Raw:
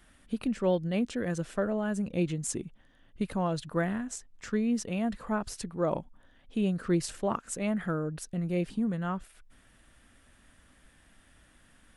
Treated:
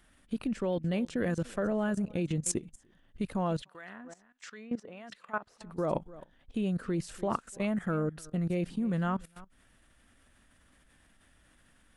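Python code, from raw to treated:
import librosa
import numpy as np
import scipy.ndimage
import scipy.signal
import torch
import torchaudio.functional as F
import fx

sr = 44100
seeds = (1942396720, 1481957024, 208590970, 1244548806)

y = x + 10.0 ** (-21.0 / 20.0) * np.pad(x, (int(294 * sr / 1000.0), 0))[:len(x)]
y = fx.filter_lfo_bandpass(y, sr, shape='sine', hz=1.4, low_hz=640.0, high_hz=3700.0, q=0.72, at=(3.61, 5.62), fade=0.02)
y = fx.level_steps(y, sr, step_db=17)
y = F.gain(torch.from_numpy(y), 4.5).numpy()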